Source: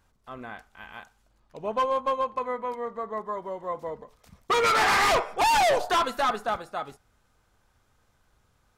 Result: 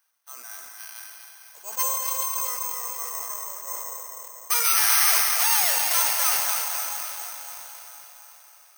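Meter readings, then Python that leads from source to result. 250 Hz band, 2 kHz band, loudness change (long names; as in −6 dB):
below −20 dB, −1.0 dB, +4.0 dB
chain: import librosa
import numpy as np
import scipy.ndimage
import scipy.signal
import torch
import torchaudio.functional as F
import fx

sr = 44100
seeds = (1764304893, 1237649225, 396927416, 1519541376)

y = fx.tracing_dist(x, sr, depth_ms=0.18)
y = scipy.signal.sosfilt(scipy.signal.butter(2, 1200.0, 'highpass', fs=sr, output='sos'), y)
y = fx.high_shelf(y, sr, hz=3700.0, db=5.5)
y = fx.echo_feedback(y, sr, ms=248, feedback_pct=48, wet_db=-6)
y = fx.rev_plate(y, sr, seeds[0], rt60_s=4.7, hf_ratio=1.0, predelay_ms=110, drr_db=4.0)
y = (np.kron(scipy.signal.resample_poly(y, 1, 6), np.eye(6)[0]) * 6)[:len(y)]
y = fx.sustainer(y, sr, db_per_s=30.0)
y = y * 10.0 ** (-5.0 / 20.0)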